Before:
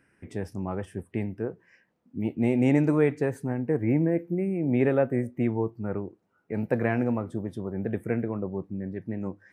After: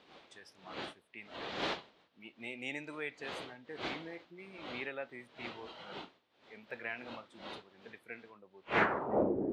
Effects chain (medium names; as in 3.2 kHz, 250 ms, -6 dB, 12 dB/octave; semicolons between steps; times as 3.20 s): wind noise 410 Hz -26 dBFS; band-pass sweep 3.7 kHz -> 360 Hz, 8.60–9.34 s; spectral noise reduction 7 dB; trim +5 dB